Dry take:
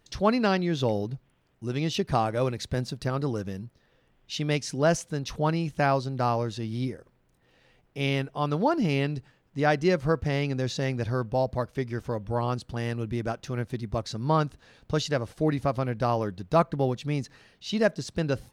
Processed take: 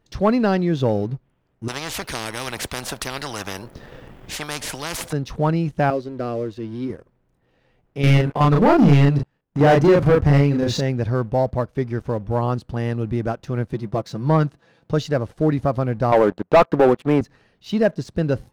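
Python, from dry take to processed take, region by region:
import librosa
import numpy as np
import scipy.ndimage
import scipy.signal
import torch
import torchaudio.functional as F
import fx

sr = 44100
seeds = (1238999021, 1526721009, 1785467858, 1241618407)

y = fx.chain(x, sr, fx.high_shelf(hz=9300.0, db=5.5),
    fx.spectral_comp(ratio=10.0), at=(1.68, 5.13))
y = fx.chain(y, sr, fx.high_shelf(hz=4600.0, db=-9.5),
    fx.fixed_phaser(hz=370.0, stages=4), at=(5.9, 6.9))
y = fx.chain(y, sr, fx.level_steps(step_db=13),
    fx.leveller(passes=3),
    fx.doubler(ms=35.0, db=-2.0), at=(8.02, 10.82))
y = fx.chain(y, sr, fx.highpass(hz=110.0, slope=12),
    fx.comb(ms=6.0, depth=0.45), at=(13.73, 14.92))
y = fx.chain(y, sr, fx.bandpass_edges(low_hz=290.0, high_hz=2100.0),
    fx.leveller(passes=3), at=(16.12, 17.21))
y = fx.high_shelf(y, sr, hz=2000.0, db=-10.5)
y = fx.leveller(y, sr, passes=1)
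y = F.gain(torch.from_numpy(y), 3.5).numpy()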